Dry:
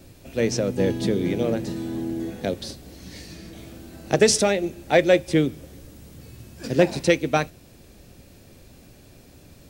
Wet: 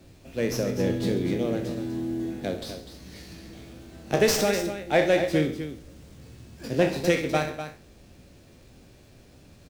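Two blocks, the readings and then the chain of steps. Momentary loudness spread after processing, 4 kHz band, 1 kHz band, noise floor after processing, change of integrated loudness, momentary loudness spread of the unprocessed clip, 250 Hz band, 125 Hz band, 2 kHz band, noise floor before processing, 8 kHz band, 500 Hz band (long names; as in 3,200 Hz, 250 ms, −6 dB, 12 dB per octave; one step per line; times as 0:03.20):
22 LU, −3.5 dB, −2.5 dB, −53 dBFS, −3.5 dB, 22 LU, −3.0 dB, −2.5 dB, −2.5 dB, −50 dBFS, −6.0 dB, −3.5 dB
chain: peak hold with a decay on every bin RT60 0.33 s
on a send: multi-tap delay 64/136/249 ms −11.5/−16/−10 dB
on the sum: windowed peak hold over 3 samples
level −5 dB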